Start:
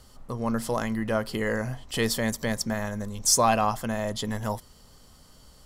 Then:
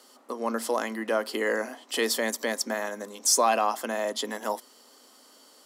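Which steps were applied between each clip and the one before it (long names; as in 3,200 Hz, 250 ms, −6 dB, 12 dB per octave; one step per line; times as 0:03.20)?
Butterworth high-pass 250 Hz 48 dB per octave
in parallel at 0 dB: brickwall limiter −18.5 dBFS, peak gain reduction 10 dB
on the sum: level −4 dB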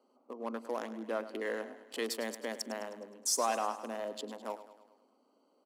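adaptive Wiener filter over 25 samples
repeating echo 104 ms, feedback 55%, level −13.5 dB
level −8.5 dB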